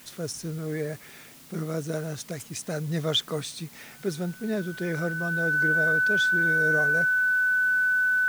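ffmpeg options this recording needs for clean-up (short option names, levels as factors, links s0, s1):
-af "bandreject=f=1500:w=30,afwtdn=0.0028"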